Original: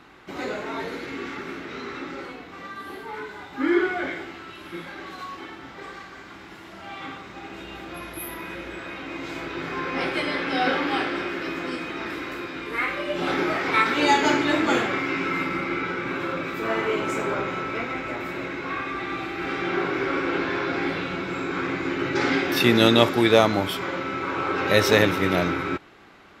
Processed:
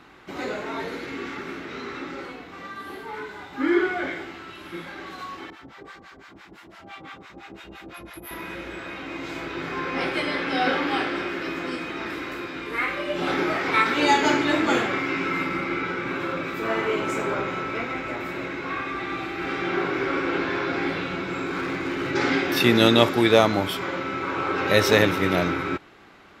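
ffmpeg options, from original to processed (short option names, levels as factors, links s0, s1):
-filter_complex "[0:a]asettb=1/sr,asplit=3[s0][s1][s2];[s0]atrim=end=5.504[s3];[s1]atrim=start=5.5:end=8.31,asetpts=PTS-STARTPTS,afade=t=in:d=0.004:c=qsin,afade=t=out:st=2.806:d=0.004:c=qsin,acrossover=split=710[s4][s5];[s4]aeval=exprs='val(0)*(1-1/2+1/2*cos(2*PI*5.9*n/s))':c=same[s6];[s5]aeval=exprs='val(0)*(1-1/2-1/2*cos(2*PI*5.9*n/s))':c=same[s7];[s6][s7]amix=inputs=2:normalize=0[s8];[s2]atrim=start=8.306[s9];[s3][s8]acrossfade=d=0.004:c1=hsin:c2=qsin[s10];[s10][s9]acrossfade=d=0.004:c1=qsin:c2=hsin,asettb=1/sr,asplit=3[s11][s12][s13];[s11]atrim=end=21.464[s14];[s12]atrim=start=21.46:end=22.11,asetpts=PTS-STARTPTS,afade=t=in:d=0.004:c=qsin,afade=t=out:st=0.646:d=0.004:c=qsin,volume=15,asoftclip=hard,volume=0.0668[s15];[s13]atrim=start=22.106[s16];[s14][s15]acrossfade=d=0.004:c1=hsin:c2=qsin[s17];[s17][s16]acrossfade=d=0.004:c1=qsin:c2=hsin"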